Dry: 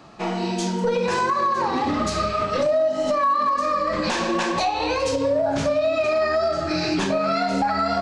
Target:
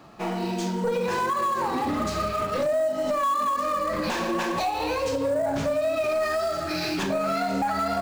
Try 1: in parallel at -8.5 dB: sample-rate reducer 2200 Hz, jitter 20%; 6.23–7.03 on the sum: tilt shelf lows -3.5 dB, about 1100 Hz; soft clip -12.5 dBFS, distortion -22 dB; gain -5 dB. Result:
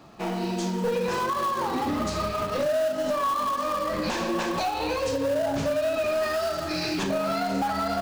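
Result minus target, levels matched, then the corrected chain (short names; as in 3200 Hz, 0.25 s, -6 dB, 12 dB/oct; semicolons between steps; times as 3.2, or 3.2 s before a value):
sample-rate reducer: distortion +13 dB
in parallel at -8.5 dB: sample-rate reducer 8300 Hz, jitter 20%; 6.23–7.03 on the sum: tilt shelf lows -3.5 dB, about 1100 Hz; soft clip -12.5 dBFS, distortion -21 dB; gain -5 dB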